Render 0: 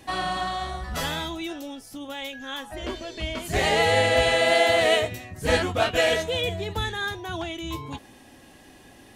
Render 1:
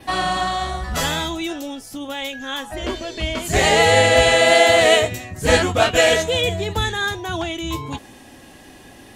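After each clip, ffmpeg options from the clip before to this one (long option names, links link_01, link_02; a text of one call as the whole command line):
ffmpeg -i in.wav -af "adynamicequalizer=threshold=0.00251:dfrequency=7200:dqfactor=3.1:tfrequency=7200:tqfactor=3.1:attack=5:release=100:ratio=0.375:range=3.5:mode=boostabove:tftype=bell,volume=6.5dB" out.wav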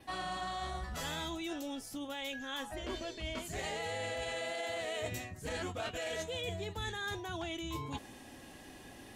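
ffmpeg -i in.wav -af "alimiter=limit=-9.5dB:level=0:latency=1,areverse,acompressor=threshold=-28dB:ratio=6,areverse,volume=-8.5dB" out.wav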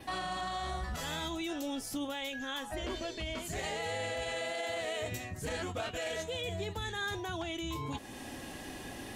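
ffmpeg -i in.wav -af "alimiter=level_in=12dB:limit=-24dB:level=0:latency=1:release=275,volume=-12dB,volume=8dB" out.wav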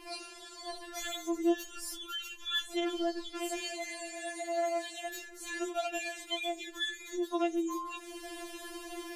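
ffmpeg -i in.wav -af "afftfilt=real='re*4*eq(mod(b,16),0)':imag='im*4*eq(mod(b,16),0)':win_size=2048:overlap=0.75,volume=4dB" out.wav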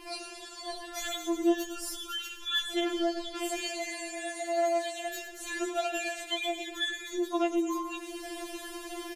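ffmpeg -i in.wav -af "aecho=1:1:112|224|336|448|560|672|784:0.251|0.148|0.0874|0.0516|0.0304|0.018|0.0106,volume=3dB" out.wav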